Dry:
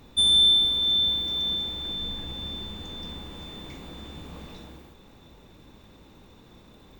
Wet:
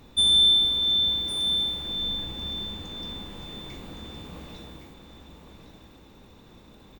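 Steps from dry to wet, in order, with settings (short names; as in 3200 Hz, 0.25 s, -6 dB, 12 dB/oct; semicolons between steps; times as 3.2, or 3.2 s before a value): echo 1.113 s -9 dB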